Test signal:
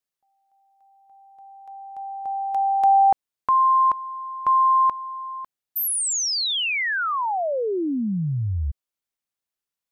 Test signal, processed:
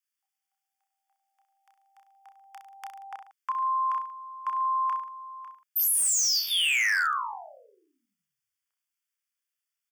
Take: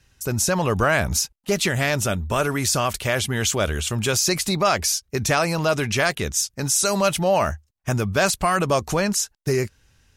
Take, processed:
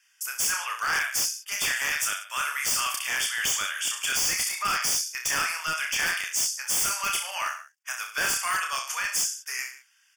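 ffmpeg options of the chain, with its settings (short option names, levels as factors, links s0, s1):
-af "highpass=f=1300:w=0.5412,highpass=f=1300:w=1.3066,aecho=1:1:30|63|99.3|139.2|183.2:0.631|0.398|0.251|0.158|0.1,tremolo=f=71:d=0.182,aeval=exprs='0.106*(abs(mod(val(0)/0.106+3,4)-2)-1)':c=same,asuperstop=centerf=4000:order=12:qfactor=4.6"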